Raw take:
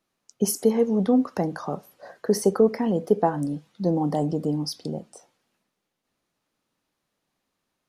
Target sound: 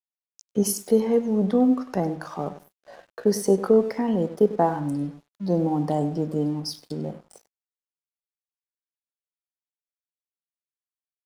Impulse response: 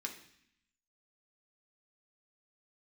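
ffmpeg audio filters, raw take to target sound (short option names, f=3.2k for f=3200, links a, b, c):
-filter_complex "[0:a]atempo=0.7,asplit=2[a][b];[b]adelay=98,lowpass=f=4.4k:p=1,volume=-13dB,asplit=2[c][d];[d]adelay=98,lowpass=f=4.4k:p=1,volume=0.26,asplit=2[e][f];[f]adelay=98,lowpass=f=4.4k:p=1,volume=0.26[g];[a][c][e][g]amix=inputs=4:normalize=0,aeval=exprs='sgn(val(0))*max(abs(val(0))-0.00335,0)':c=same"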